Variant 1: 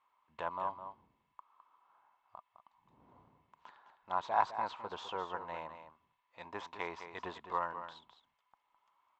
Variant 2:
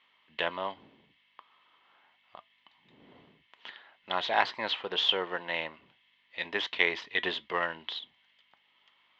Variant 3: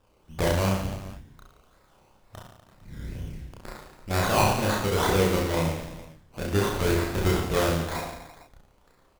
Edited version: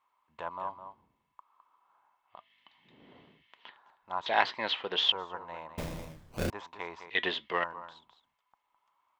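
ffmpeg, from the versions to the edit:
-filter_complex "[1:a]asplit=3[s0][s1][s2];[0:a]asplit=5[s3][s4][s5][s6][s7];[s3]atrim=end=2.5[s8];[s0]atrim=start=2.26:end=3.78[s9];[s4]atrim=start=3.54:end=4.262[s10];[s1]atrim=start=4.258:end=5.122[s11];[s5]atrim=start=5.118:end=5.782[s12];[2:a]atrim=start=5.778:end=6.502[s13];[s6]atrim=start=6.498:end=7.102[s14];[s2]atrim=start=7.098:end=7.642[s15];[s7]atrim=start=7.638[s16];[s8][s9]acrossfade=d=0.24:c1=tri:c2=tri[s17];[s17][s10]acrossfade=d=0.24:c1=tri:c2=tri[s18];[s18][s11]acrossfade=d=0.004:c1=hsin:c2=hsin[s19];[s19][s12]acrossfade=d=0.004:c1=hsin:c2=hsin[s20];[s20][s13]acrossfade=d=0.004:c1=hsin:c2=hsin[s21];[s21][s14]acrossfade=d=0.004:c1=hsin:c2=hsin[s22];[s22][s15]acrossfade=d=0.004:c1=hsin:c2=hsin[s23];[s23][s16]acrossfade=d=0.004:c1=hsin:c2=hsin"

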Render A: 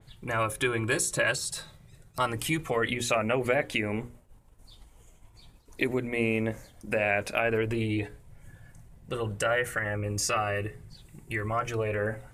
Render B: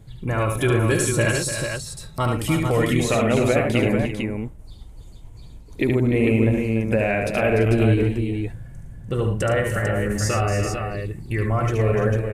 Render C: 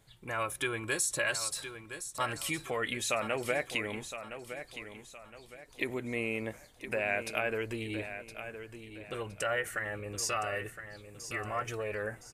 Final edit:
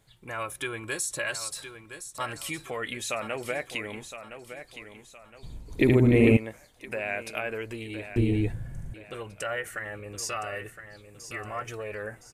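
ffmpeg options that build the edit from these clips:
-filter_complex "[1:a]asplit=2[s0][s1];[2:a]asplit=3[s2][s3][s4];[s2]atrim=end=5.432[s5];[s0]atrim=start=5.428:end=6.372[s6];[s3]atrim=start=6.368:end=8.162[s7];[s1]atrim=start=8.158:end=8.942[s8];[s4]atrim=start=8.938[s9];[s5][s6]acrossfade=d=0.004:c1=hsin:c2=hsin[s10];[s10][s7]acrossfade=d=0.004:c1=hsin:c2=hsin[s11];[s11][s8]acrossfade=d=0.004:c1=hsin:c2=hsin[s12];[s12][s9]acrossfade=d=0.004:c1=hsin:c2=hsin"

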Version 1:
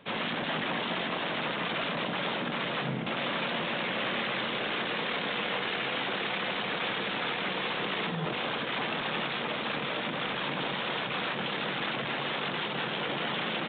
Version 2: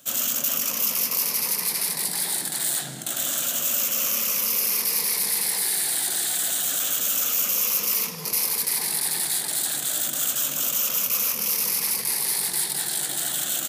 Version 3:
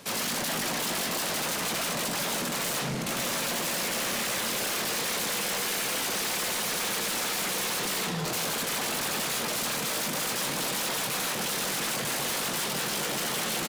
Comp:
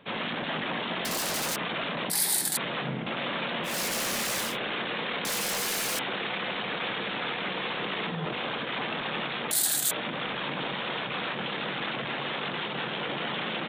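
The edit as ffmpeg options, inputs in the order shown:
-filter_complex "[2:a]asplit=3[s0][s1][s2];[1:a]asplit=2[s3][s4];[0:a]asplit=6[s5][s6][s7][s8][s9][s10];[s5]atrim=end=1.052[s11];[s0]atrim=start=1.048:end=1.562[s12];[s6]atrim=start=1.558:end=2.102[s13];[s3]atrim=start=2.098:end=2.572[s14];[s7]atrim=start=2.568:end=3.79[s15];[s1]atrim=start=3.63:end=4.57[s16];[s8]atrim=start=4.41:end=5.252[s17];[s2]atrim=start=5.248:end=5.992[s18];[s9]atrim=start=5.988:end=9.512[s19];[s4]atrim=start=9.508:end=9.912[s20];[s10]atrim=start=9.908[s21];[s11][s12]acrossfade=d=0.004:c1=hsin:c2=hsin[s22];[s22][s13]acrossfade=d=0.004:c1=hsin:c2=hsin[s23];[s23][s14]acrossfade=d=0.004:c1=hsin:c2=hsin[s24];[s24][s15]acrossfade=d=0.004:c1=hsin:c2=hsin[s25];[s25][s16]acrossfade=d=0.16:c1=tri:c2=tri[s26];[s26][s17]acrossfade=d=0.16:c1=tri:c2=tri[s27];[s27][s18]acrossfade=d=0.004:c1=hsin:c2=hsin[s28];[s28][s19]acrossfade=d=0.004:c1=hsin:c2=hsin[s29];[s29][s20]acrossfade=d=0.004:c1=hsin:c2=hsin[s30];[s30][s21]acrossfade=d=0.004:c1=hsin:c2=hsin"

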